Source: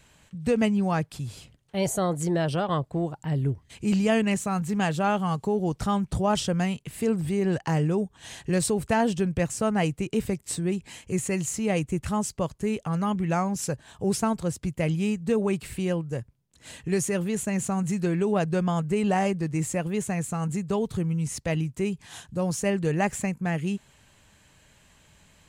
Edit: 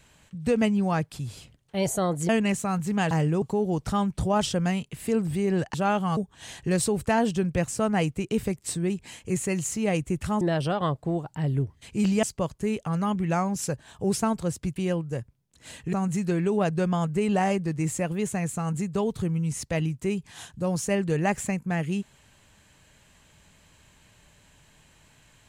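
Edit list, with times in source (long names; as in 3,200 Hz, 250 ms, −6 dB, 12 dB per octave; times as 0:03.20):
0:02.29–0:04.11: move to 0:12.23
0:04.93–0:05.36: swap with 0:07.68–0:07.99
0:14.76–0:15.76: remove
0:16.93–0:17.68: remove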